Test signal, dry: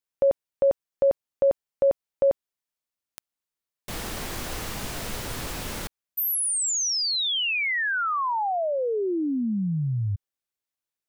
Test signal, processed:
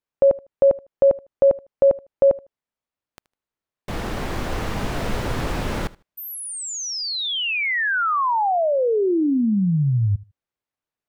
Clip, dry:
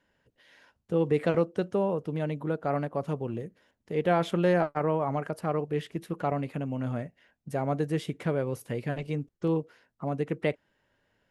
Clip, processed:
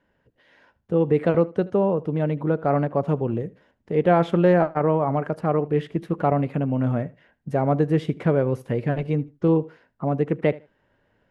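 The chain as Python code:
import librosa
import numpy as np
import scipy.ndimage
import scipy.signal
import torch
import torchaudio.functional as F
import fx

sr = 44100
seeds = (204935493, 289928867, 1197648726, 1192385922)

p1 = fx.lowpass(x, sr, hz=1400.0, slope=6)
p2 = fx.echo_feedback(p1, sr, ms=77, feedback_pct=19, wet_db=-21.0)
p3 = fx.rider(p2, sr, range_db=4, speed_s=2.0)
y = p2 + (p3 * librosa.db_to_amplitude(3.0))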